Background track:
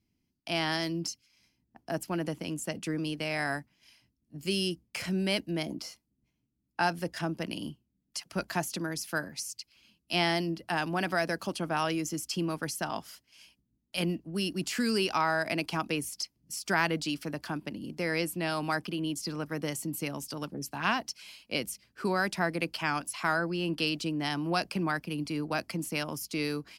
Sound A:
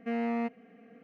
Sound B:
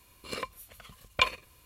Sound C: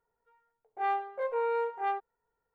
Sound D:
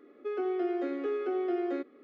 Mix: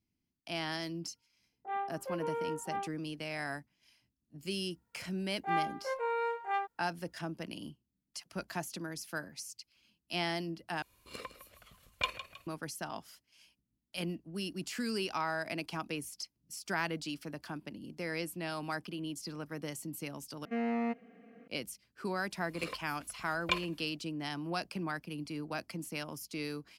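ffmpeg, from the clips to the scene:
-filter_complex "[3:a]asplit=2[a][b];[2:a]asplit=2[c][d];[0:a]volume=-7dB[e];[a]afwtdn=0.00708[f];[b]tiltshelf=f=970:g=-6[g];[c]asplit=5[h][i][j][k][l];[i]adelay=158,afreqshift=35,volume=-12.5dB[m];[j]adelay=316,afreqshift=70,volume=-20.7dB[n];[k]adelay=474,afreqshift=105,volume=-28.9dB[o];[l]adelay=632,afreqshift=140,volume=-37dB[p];[h][m][n][o][p]amix=inputs=5:normalize=0[q];[e]asplit=3[r][s][t];[r]atrim=end=10.824[u];[q]atrim=end=1.65,asetpts=PTS-STARTPTS,volume=-8.5dB[v];[s]atrim=start=12.466:end=20.454[w];[1:a]atrim=end=1.03,asetpts=PTS-STARTPTS,volume=-2dB[x];[t]atrim=start=21.476[y];[f]atrim=end=2.54,asetpts=PTS-STARTPTS,volume=-6.5dB,afade=t=in:d=0.004:c=hsin,afade=t=out:st=2.536:d=0.004:c=hsin,adelay=880[z];[g]atrim=end=2.54,asetpts=PTS-STARTPTS,volume=-1.5dB,afade=t=in:d=0.004:c=hsin,afade=t=out:st=2.536:d=0.004:c=hsin,adelay=4670[aa];[d]atrim=end=1.65,asetpts=PTS-STARTPTS,volume=-7dB,afade=t=in:d=0.02,afade=t=out:st=1.63:d=0.02,adelay=22300[ab];[u][v]acrossfade=d=0.004:c1=hsin:c2=hsin[ac];[ac][w]acrossfade=d=0.004:c1=hsin:c2=hsin[ad];[ad][x]acrossfade=d=0.004:c1=hsin:c2=hsin[ae];[ae][y]acrossfade=d=0.004:c1=hsin:c2=hsin[af];[af][z][aa][ab]amix=inputs=4:normalize=0"

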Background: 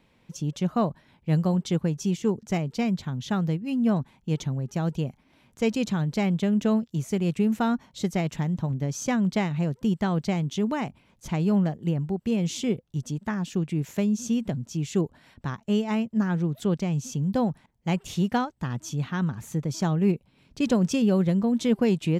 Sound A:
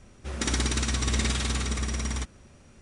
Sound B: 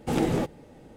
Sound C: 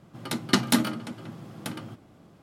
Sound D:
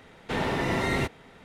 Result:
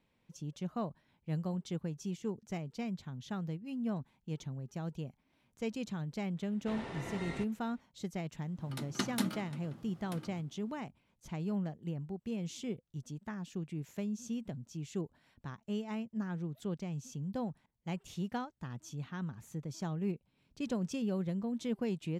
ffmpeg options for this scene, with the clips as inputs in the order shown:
-filter_complex "[0:a]volume=-13dB[a];[4:a]aresample=22050,aresample=44100,atrim=end=1.44,asetpts=PTS-STARTPTS,volume=-16dB,afade=t=in:d=0.004:c=hsin,afade=t=out:st=1.436:d=0.004:c=hsin,adelay=6370[b];[3:a]atrim=end=2.42,asetpts=PTS-STARTPTS,volume=-13dB,afade=t=in:d=0.004:c=hsin,afade=t=out:st=2.416:d=0.004:c=hsin,adelay=8460[c];[a][b][c]amix=inputs=3:normalize=0"

